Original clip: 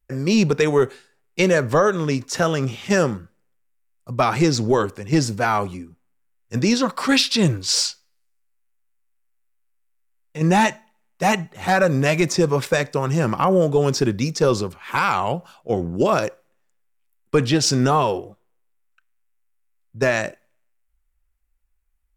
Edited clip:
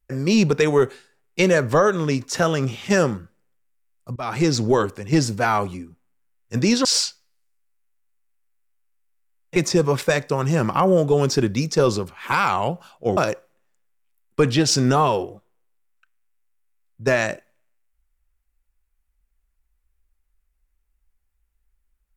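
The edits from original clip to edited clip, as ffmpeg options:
ffmpeg -i in.wav -filter_complex "[0:a]asplit=5[link_01][link_02][link_03][link_04][link_05];[link_01]atrim=end=4.16,asetpts=PTS-STARTPTS,afade=type=out:start_time=4.156:duration=0.004:curve=hsin:silence=0.0794328[link_06];[link_02]atrim=start=4.16:end=6.852,asetpts=PTS-STARTPTS,afade=type=in:duration=0.48:curve=qsin:silence=0.0794328[link_07];[link_03]atrim=start=7.668:end=10.382[link_08];[link_04]atrim=start=12.198:end=15.812[link_09];[link_05]atrim=start=16.118[link_10];[link_06][link_07]concat=n=2:v=0:a=1[link_11];[link_11][link_08]acrossfade=duration=0.004:curve1=hsin:curve2=hsin[link_12];[link_12][link_09]acrossfade=duration=0.004:curve1=hsin:curve2=hsin[link_13];[link_13][link_10]acrossfade=duration=0.004:curve1=hsin:curve2=hsin" out.wav

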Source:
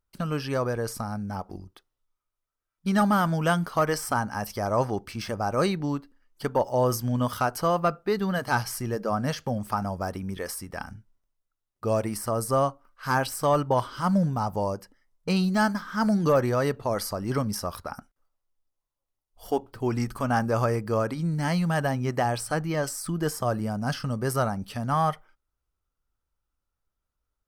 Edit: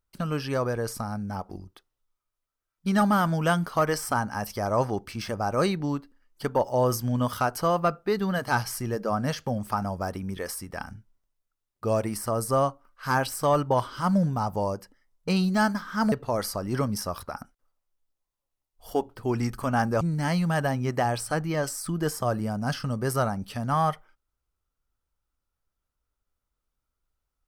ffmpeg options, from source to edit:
ffmpeg -i in.wav -filter_complex "[0:a]asplit=3[link_01][link_02][link_03];[link_01]atrim=end=16.122[link_04];[link_02]atrim=start=16.688:end=20.582[link_05];[link_03]atrim=start=21.208[link_06];[link_04][link_05]acrossfade=duration=0.004:curve1=hsin:curve2=hsin[link_07];[link_07][link_06]acrossfade=duration=0.004:curve1=hsin:curve2=hsin" out.wav

